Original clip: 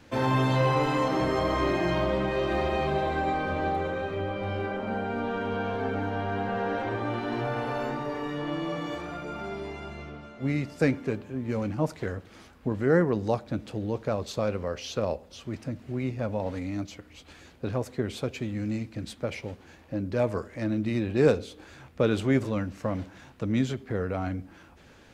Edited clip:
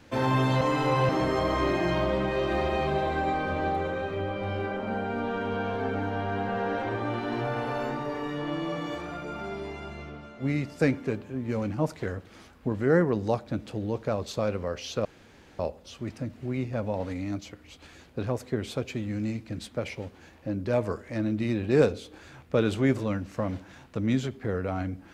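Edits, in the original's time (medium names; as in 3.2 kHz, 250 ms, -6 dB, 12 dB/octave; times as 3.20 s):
0.61–1.09 s: reverse
15.05 s: insert room tone 0.54 s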